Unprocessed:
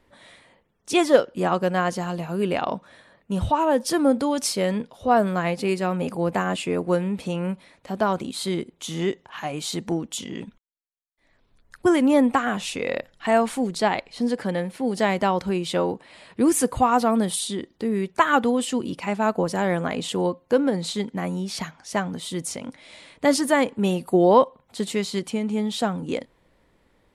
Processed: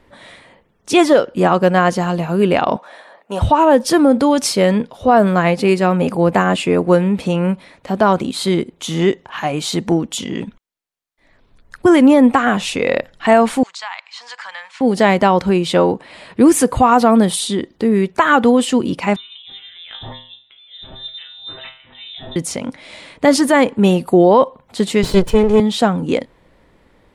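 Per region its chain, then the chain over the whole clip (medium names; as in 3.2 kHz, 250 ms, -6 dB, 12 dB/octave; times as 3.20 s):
2.76–3.42 s: high-pass 440 Hz + peaking EQ 770 Hz +8 dB 0.88 oct
13.63–14.81 s: elliptic band-pass 1–7.3 kHz, stop band 50 dB + compression 3:1, threshold -36 dBFS
19.16–22.36 s: compressor with a negative ratio -33 dBFS + feedback comb 67 Hz, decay 0.42 s, harmonics odd, mix 90% + frequency inversion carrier 3.8 kHz
25.03–25.60 s: comb filter that takes the minimum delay 2 ms + bass shelf 470 Hz +10.5 dB
whole clip: treble shelf 5.1 kHz -6 dB; loudness maximiser +11 dB; trim -1 dB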